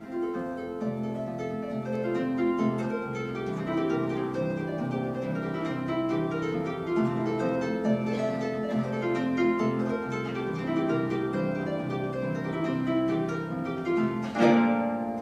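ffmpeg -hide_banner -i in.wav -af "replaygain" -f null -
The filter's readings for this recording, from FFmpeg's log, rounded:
track_gain = +9.9 dB
track_peak = 0.216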